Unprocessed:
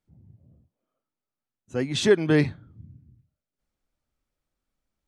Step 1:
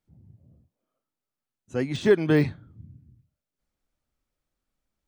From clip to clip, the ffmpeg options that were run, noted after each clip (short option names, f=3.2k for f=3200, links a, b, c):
-af "deesser=0.9"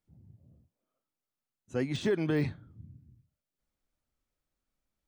-af "alimiter=limit=-16.5dB:level=0:latency=1:release=25,volume=-3.5dB"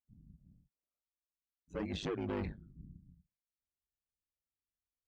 -af "asoftclip=type=tanh:threshold=-32dB,afftdn=nr=17:nf=-52,aeval=exprs='val(0)*sin(2*PI*50*n/s)':c=same,volume=1dB"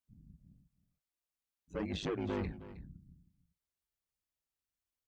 -af "aecho=1:1:316:0.168,volume=1dB"